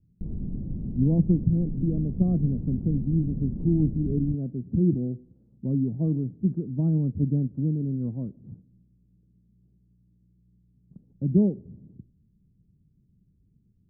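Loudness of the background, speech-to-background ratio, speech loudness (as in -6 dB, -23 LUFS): -34.5 LUFS, 8.0 dB, -26.5 LUFS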